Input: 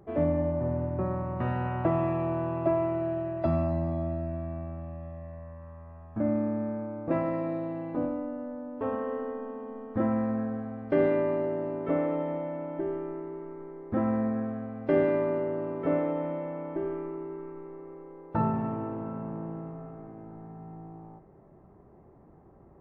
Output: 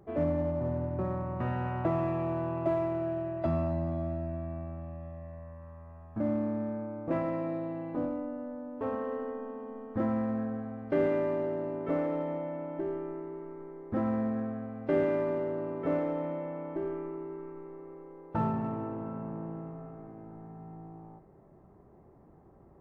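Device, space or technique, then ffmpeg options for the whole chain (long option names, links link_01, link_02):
parallel distortion: -filter_complex "[0:a]asplit=2[link_01][link_02];[link_02]asoftclip=type=hard:threshold=-27dB,volume=-10dB[link_03];[link_01][link_03]amix=inputs=2:normalize=0,volume=-4.5dB"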